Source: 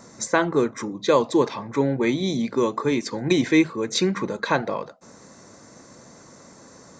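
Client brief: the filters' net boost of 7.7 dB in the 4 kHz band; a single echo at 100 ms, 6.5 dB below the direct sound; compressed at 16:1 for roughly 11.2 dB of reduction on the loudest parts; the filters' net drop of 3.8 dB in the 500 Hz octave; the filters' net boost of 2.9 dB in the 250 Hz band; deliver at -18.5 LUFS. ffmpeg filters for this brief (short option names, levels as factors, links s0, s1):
-af "equalizer=f=250:t=o:g=7,equalizer=f=500:t=o:g=-8.5,equalizer=f=4000:t=o:g=8.5,acompressor=threshold=0.0794:ratio=16,aecho=1:1:100:0.473,volume=2.51"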